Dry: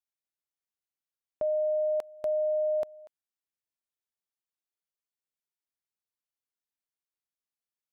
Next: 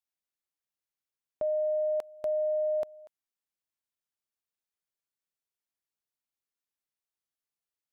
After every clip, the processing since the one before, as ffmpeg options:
-af "acontrast=66,volume=-7.5dB"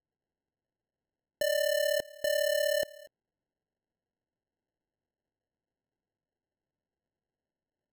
-af "acrusher=samples=37:mix=1:aa=0.000001"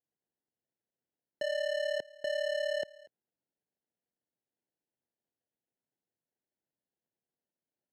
-af "highpass=130,lowpass=4.4k,volume=-4dB"

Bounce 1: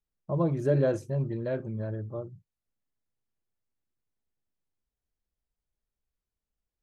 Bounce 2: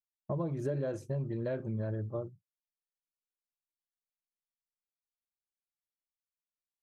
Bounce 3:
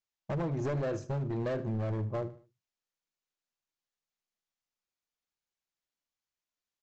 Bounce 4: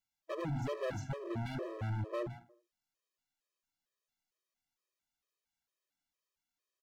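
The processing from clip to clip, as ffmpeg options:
-af "agate=range=-33dB:threshold=-35dB:ratio=3:detection=peak,acompressor=threshold=-34dB:ratio=6,volume=2.5dB"
-af "aresample=16000,asoftclip=type=hard:threshold=-34dB,aresample=44100,aecho=1:1:76|152|228:0.158|0.0555|0.0194,volume=4.5dB"
-filter_complex "[0:a]asplit=2[a][b];[b]adelay=160,highpass=300,lowpass=3.4k,asoftclip=type=hard:threshold=-37.5dB,volume=-10dB[c];[a][c]amix=inputs=2:normalize=0,asoftclip=type=hard:threshold=-37dB,afftfilt=real='re*gt(sin(2*PI*2.2*pts/sr)*(1-2*mod(floor(b*sr/1024/330),2)),0)':imag='im*gt(sin(2*PI*2.2*pts/sr)*(1-2*mod(floor(b*sr/1024/330),2)),0)':win_size=1024:overlap=0.75,volume=4dB"

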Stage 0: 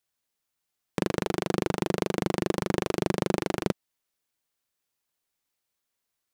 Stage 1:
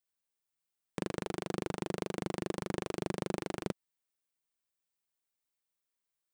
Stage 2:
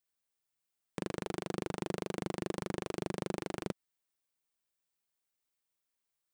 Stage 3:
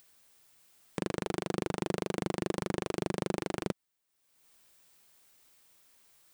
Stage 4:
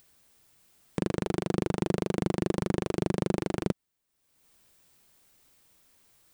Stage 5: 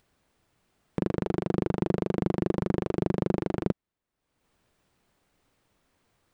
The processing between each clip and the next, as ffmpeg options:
-af "aexciter=amount=1.5:drive=0.9:freq=8k,volume=-9dB"
-af "alimiter=limit=-20.5dB:level=0:latency=1:release=105,volume=1dB"
-af "acompressor=mode=upward:threshold=-51dB:ratio=2.5,volume=4dB"
-af "lowshelf=f=380:g=8.5"
-af "lowpass=f=1.5k:p=1,volume=1.5dB"

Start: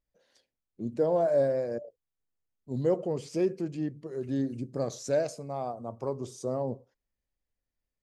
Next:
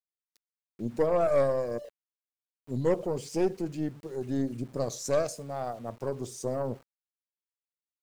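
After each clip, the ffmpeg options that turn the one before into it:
-af "aeval=exprs='0.158*(cos(1*acos(clip(val(0)/0.158,-1,1)))-cos(1*PI/2))+0.02*(cos(4*acos(clip(val(0)/0.158,-1,1)))-cos(4*PI/2))':c=same,highshelf=f=7.4k:g=11,aeval=exprs='val(0)*gte(abs(val(0)),0.00266)':c=same"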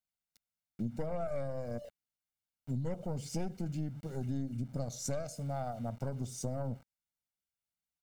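-af "lowshelf=f=310:t=q:w=1.5:g=6.5,aecho=1:1:1.4:0.56,acompressor=threshold=-32dB:ratio=5,volume=-1.5dB"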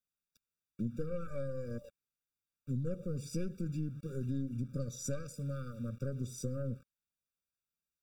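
-af "afftfilt=real='re*eq(mod(floor(b*sr/1024/560),2),0)':imag='im*eq(mod(floor(b*sr/1024/560),2),0)':win_size=1024:overlap=0.75"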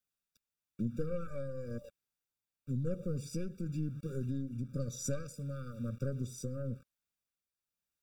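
-af "tremolo=f=1:d=0.36,volume=2dB"

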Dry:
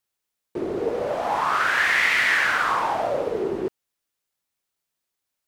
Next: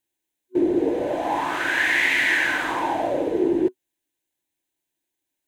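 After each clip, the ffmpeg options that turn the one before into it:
-af "superequalizer=6b=3.55:10b=0.282:14b=0.501"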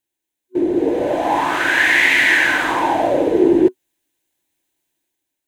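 -af "dynaudnorm=f=350:g=5:m=10dB"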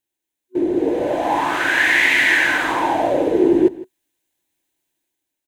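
-af "aecho=1:1:160:0.119,volume=-1.5dB"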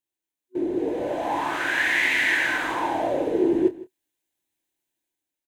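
-filter_complex "[0:a]asplit=2[a][b];[b]adelay=27,volume=-10.5dB[c];[a][c]amix=inputs=2:normalize=0,volume=-7dB"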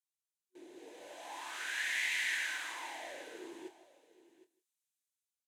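-af "bandpass=f=7.6k:t=q:w=0.74:csg=0,aecho=1:1:761:0.15,volume=-3.5dB"

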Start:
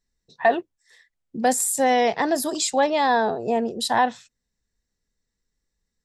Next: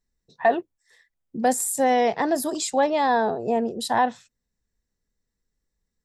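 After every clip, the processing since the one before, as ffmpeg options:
-af "equalizer=f=4k:t=o:w=2.7:g=-5"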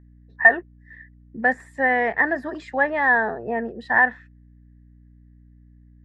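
-af "aeval=exprs='val(0)+0.00562*(sin(2*PI*60*n/s)+sin(2*PI*2*60*n/s)/2+sin(2*PI*3*60*n/s)/3+sin(2*PI*4*60*n/s)/4+sin(2*PI*5*60*n/s)/5)':c=same,lowpass=f=1.8k:t=q:w=11,volume=-4dB"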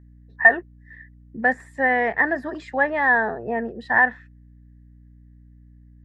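-af "equalizer=f=87:w=0.86:g=2.5"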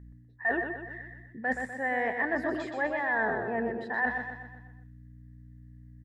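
-af "areverse,acompressor=threshold=-27dB:ratio=8,areverse,aecho=1:1:124|248|372|496|620|744:0.501|0.251|0.125|0.0626|0.0313|0.0157"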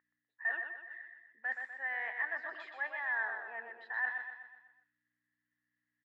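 -af "asuperpass=centerf=2000:order=4:qfactor=0.74,volume=-4.5dB"

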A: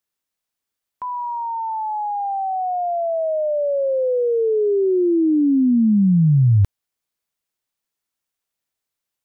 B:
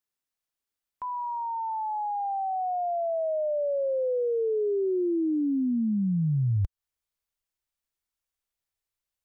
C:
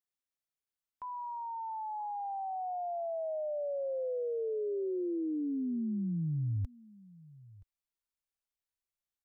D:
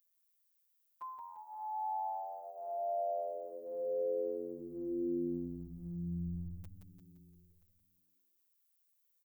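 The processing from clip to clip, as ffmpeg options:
-af "asubboost=boost=5.5:cutoff=75,acompressor=threshold=-17dB:ratio=10,volume=-6dB"
-af "aecho=1:1:975:0.0794,volume=-8dB"
-filter_complex "[0:a]aemphasis=mode=production:type=bsi,afftfilt=real='hypot(re,im)*cos(PI*b)':imag='0':win_size=1024:overlap=0.75,asplit=7[a][b][c][d][e][f][g];[b]adelay=172,afreqshift=-90,volume=-5.5dB[h];[c]adelay=344,afreqshift=-180,volume=-12.1dB[i];[d]adelay=516,afreqshift=-270,volume=-18.6dB[j];[e]adelay=688,afreqshift=-360,volume=-25.2dB[k];[f]adelay=860,afreqshift=-450,volume=-31.7dB[l];[g]adelay=1032,afreqshift=-540,volume=-38.3dB[m];[a][h][i][j][k][l][m]amix=inputs=7:normalize=0,volume=1.5dB"

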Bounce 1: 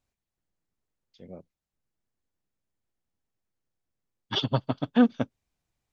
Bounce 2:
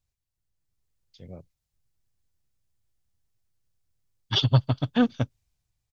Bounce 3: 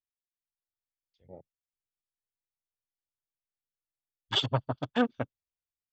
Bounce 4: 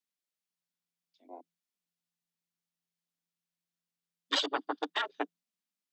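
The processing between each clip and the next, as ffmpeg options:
-af "firequalizer=gain_entry='entry(120,0);entry(200,-13);entry(4600,-4)':delay=0.05:min_phase=1,dynaudnorm=f=160:g=9:m=7dB,volume=4dB"
-af "bass=f=250:g=-13,treble=f=4k:g=-9,afwtdn=0.00794"
-af "equalizer=f=4k:t=o:w=2.3:g=4.5,afreqshift=170,afftfilt=real='re*lt(hypot(re,im),0.251)':imag='im*lt(hypot(re,im),0.251)':win_size=1024:overlap=0.75"

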